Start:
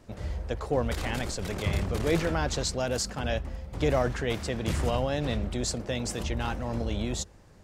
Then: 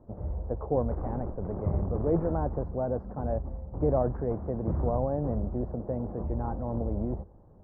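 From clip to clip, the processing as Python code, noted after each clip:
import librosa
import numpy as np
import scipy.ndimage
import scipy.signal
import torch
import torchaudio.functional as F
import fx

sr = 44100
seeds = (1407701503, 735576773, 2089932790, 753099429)

y = scipy.signal.sosfilt(scipy.signal.cheby2(4, 60, 3200.0, 'lowpass', fs=sr, output='sos'), x)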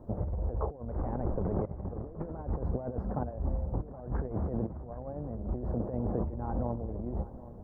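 y = fx.over_compress(x, sr, threshold_db=-34.0, ratio=-0.5)
y = fx.echo_feedback(y, sr, ms=771, feedback_pct=44, wet_db=-16.5)
y = y * 10.0 ** (1.0 / 20.0)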